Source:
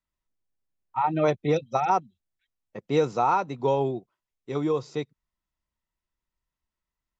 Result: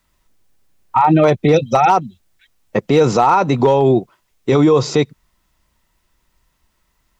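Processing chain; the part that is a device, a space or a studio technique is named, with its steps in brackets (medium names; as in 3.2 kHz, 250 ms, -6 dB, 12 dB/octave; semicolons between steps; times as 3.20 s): loud club master (compression 2:1, threshold -25 dBFS, peak gain reduction 5 dB; hard clipper -18 dBFS, distortion -27 dB; loudness maximiser +27 dB); trim -3.5 dB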